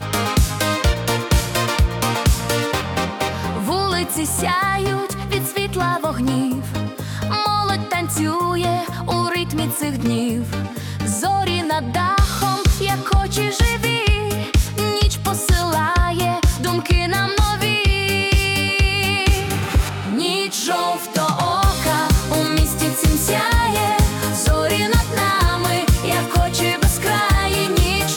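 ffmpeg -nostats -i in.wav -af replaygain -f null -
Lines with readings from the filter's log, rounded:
track_gain = +1.3 dB
track_peak = 0.370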